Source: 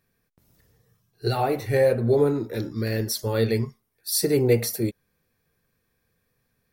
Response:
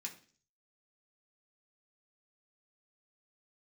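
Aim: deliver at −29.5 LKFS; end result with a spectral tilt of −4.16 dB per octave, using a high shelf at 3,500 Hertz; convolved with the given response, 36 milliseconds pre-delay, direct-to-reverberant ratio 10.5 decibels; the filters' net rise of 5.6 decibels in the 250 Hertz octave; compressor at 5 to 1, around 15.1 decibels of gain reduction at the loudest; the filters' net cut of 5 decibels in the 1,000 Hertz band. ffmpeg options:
-filter_complex "[0:a]equalizer=frequency=250:width_type=o:gain=7.5,equalizer=frequency=1000:width_type=o:gain=-9,highshelf=frequency=3500:gain=9,acompressor=threshold=-31dB:ratio=5,asplit=2[link_01][link_02];[1:a]atrim=start_sample=2205,adelay=36[link_03];[link_02][link_03]afir=irnorm=-1:irlink=0,volume=-8dB[link_04];[link_01][link_04]amix=inputs=2:normalize=0,volume=3.5dB"

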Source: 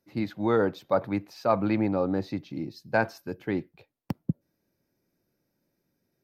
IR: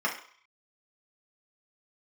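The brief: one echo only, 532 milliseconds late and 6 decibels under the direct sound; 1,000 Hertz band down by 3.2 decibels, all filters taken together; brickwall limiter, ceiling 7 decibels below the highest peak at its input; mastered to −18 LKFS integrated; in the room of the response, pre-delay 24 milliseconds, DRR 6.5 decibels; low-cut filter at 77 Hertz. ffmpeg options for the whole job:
-filter_complex "[0:a]highpass=77,equalizer=frequency=1000:width_type=o:gain=-4.5,alimiter=limit=-18.5dB:level=0:latency=1,aecho=1:1:532:0.501,asplit=2[link_01][link_02];[1:a]atrim=start_sample=2205,adelay=24[link_03];[link_02][link_03]afir=irnorm=-1:irlink=0,volume=-17dB[link_04];[link_01][link_04]amix=inputs=2:normalize=0,volume=12.5dB"

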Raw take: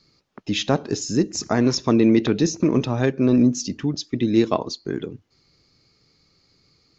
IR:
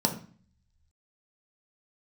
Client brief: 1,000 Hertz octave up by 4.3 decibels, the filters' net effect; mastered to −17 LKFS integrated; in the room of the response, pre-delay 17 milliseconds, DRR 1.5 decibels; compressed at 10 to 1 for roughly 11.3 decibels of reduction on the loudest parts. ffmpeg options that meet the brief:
-filter_complex "[0:a]equalizer=frequency=1000:width_type=o:gain=5.5,acompressor=threshold=-23dB:ratio=10,asplit=2[link_01][link_02];[1:a]atrim=start_sample=2205,adelay=17[link_03];[link_02][link_03]afir=irnorm=-1:irlink=0,volume=-11dB[link_04];[link_01][link_04]amix=inputs=2:normalize=0,volume=5.5dB"

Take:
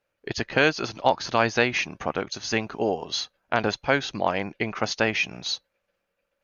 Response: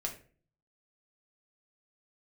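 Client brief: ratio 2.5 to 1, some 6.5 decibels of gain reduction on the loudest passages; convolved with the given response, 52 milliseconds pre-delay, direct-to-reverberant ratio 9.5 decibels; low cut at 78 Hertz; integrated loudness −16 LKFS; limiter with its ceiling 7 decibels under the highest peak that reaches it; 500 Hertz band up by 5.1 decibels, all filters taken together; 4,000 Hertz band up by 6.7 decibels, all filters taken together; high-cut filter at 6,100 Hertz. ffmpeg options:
-filter_complex "[0:a]highpass=78,lowpass=6100,equalizer=frequency=500:width_type=o:gain=6,equalizer=frequency=4000:width_type=o:gain=8.5,acompressor=threshold=-21dB:ratio=2.5,alimiter=limit=-12.5dB:level=0:latency=1,asplit=2[link_01][link_02];[1:a]atrim=start_sample=2205,adelay=52[link_03];[link_02][link_03]afir=irnorm=-1:irlink=0,volume=-10.5dB[link_04];[link_01][link_04]amix=inputs=2:normalize=0,volume=10.5dB"

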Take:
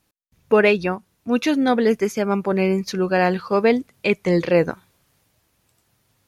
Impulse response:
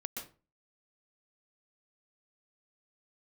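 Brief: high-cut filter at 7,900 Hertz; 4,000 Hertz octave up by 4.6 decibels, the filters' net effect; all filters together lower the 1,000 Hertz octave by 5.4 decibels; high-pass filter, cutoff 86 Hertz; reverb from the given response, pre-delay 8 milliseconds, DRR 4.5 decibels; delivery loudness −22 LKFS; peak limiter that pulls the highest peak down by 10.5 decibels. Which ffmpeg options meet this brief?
-filter_complex "[0:a]highpass=86,lowpass=7900,equalizer=frequency=1000:width_type=o:gain=-8.5,equalizer=frequency=4000:width_type=o:gain=6.5,alimiter=limit=-14.5dB:level=0:latency=1,asplit=2[link_01][link_02];[1:a]atrim=start_sample=2205,adelay=8[link_03];[link_02][link_03]afir=irnorm=-1:irlink=0,volume=-4dB[link_04];[link_01][link_04]amix=inputs=2:normalize=0,volume=1dB"

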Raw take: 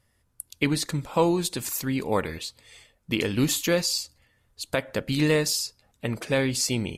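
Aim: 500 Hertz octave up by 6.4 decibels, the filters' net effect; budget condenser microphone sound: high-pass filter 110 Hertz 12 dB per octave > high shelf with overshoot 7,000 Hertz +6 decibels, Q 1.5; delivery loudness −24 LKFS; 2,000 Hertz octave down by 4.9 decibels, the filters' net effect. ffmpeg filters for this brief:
ffmpeg -i in.wav -af "highpass=110,equalizer=frequency=500:width_type=o:gain=7.5,equalizer=frequency=2000:width_type=o:gain=-6,highshelf=frequency=7000:width_type=q:width=1.5:gain=6,volume=-1.5dB" out.wav

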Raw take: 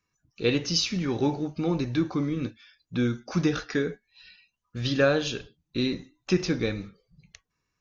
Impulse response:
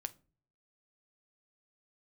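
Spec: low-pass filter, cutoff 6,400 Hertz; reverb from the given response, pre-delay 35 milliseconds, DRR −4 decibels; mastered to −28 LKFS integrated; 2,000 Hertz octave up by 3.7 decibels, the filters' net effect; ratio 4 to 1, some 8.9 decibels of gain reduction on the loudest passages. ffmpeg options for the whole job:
-filter_complex "[0:a]lowpass=6400,equalizer=frequency=2000:width_type=o:gain=5,acompressor=threshold=-27dB:ratio=4,asplit=2[link_01][link_02];[1:a]atrim=start_sample=2205,adelay=35[link_03];[link_02][link_03]afir=irnorm=-1:irlink=0,volume=6dB[link_04];[link_01][link_04]amix=inputs=2:normalize=0,volume=-1dB"

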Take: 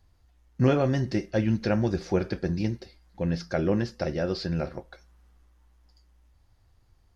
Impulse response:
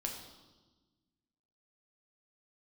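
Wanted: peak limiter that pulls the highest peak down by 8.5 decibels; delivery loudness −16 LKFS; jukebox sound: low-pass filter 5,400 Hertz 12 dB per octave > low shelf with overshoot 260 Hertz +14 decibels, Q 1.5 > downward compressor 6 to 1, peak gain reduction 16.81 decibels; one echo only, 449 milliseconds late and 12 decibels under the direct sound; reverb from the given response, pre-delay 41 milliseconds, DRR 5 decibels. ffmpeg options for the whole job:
-filter_complex "[0:a]alimiter=limit=-16.5dB:level=0:latency=1,aecho=1:1:449:0.251,asplit=2[link_01][link_02];[1:a]atrim=start_sample=2205,adelay=41[link_03];[link_02][link_03]afir=irnorm=-1:irlink=0,volume=-5.5dB[link_04];[link_01][link_04]amix=inputs=2:normalize=0,lowpass=5400,lowshelf=frequency=260:width_type=q:width=1.5:gain=14,acompressor=threshold=-24dB:ratio=6,volume=11.5dB"

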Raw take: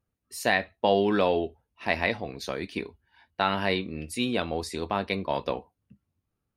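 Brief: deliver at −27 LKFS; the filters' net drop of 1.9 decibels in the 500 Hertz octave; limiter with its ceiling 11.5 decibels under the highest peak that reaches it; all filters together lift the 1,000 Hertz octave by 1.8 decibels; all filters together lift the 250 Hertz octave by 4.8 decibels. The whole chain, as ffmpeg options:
ffmpeg -i in.wav -af "equalizer=frequency=250:width_type=o:gain=7.5,equalizer=frequency=500:width_type=o:gain=-6,equalizer=frequency=1000:width_type=o:gain=4.5,volume=5dB,alimiter=limit=-14dB:level=0:latency=1" out.wav

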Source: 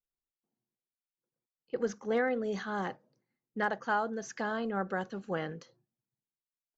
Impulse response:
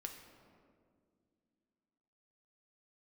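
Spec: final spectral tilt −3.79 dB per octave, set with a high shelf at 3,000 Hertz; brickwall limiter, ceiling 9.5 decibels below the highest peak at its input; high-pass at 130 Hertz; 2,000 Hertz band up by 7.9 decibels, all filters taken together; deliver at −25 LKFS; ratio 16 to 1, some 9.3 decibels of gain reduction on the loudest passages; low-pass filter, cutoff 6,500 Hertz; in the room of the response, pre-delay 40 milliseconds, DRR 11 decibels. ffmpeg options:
-filter_complex "[0:a]highpass=130,lowpass=6500,equalizer=frequency=2000:width_type=o:gain=8.5,highshelf=frequency=3000:gain=7.5,acompressor=threshold=-30dB:ratio=16,alimiter=level_in=6dB:limit=-24dB:level=0:latency=1,volume=-6dB,asplit=2[link_01][link_02];[1:a]atrim=start_sample=2205,adelay=40[link_03];[link_02][link_03]afir=irnorm=-1:irlink=0,volume=-7.5dB[link_04];[link_01][link_04]amix=inputs=2:normalize=0,volume=15dB"

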